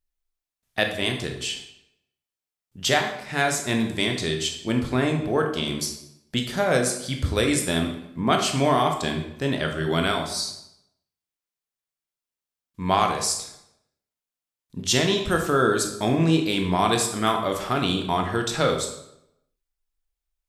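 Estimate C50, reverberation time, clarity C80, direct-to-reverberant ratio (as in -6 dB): 6.5 dB, 0.80 s, 10.0 dB, 3.0 dB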